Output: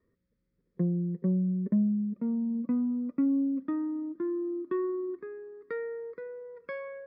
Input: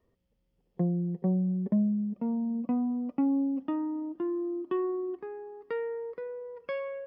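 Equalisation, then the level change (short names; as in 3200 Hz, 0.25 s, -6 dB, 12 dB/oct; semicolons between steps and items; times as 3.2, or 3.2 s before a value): air absorption 220 m; low shelf 100 Hz -11 dB; fixed phaser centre 2900 Hz, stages 6; +3.5 dB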